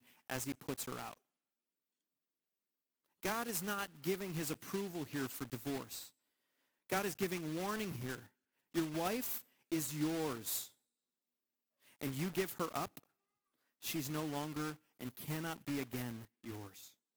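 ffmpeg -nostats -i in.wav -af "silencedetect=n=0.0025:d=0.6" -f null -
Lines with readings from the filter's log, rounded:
silence_start: 1.13
silence_end: 3.23 | silence_duration: 2.10
silence_start: 6.08
silence_end: 6.90 | silence_duration: 0.82
silence_start: 10.68
silence_end: 12.01 | silence_duration: 1.34
silence_start: 12.99
silence_end: 13.82 | silence_duration: 0.83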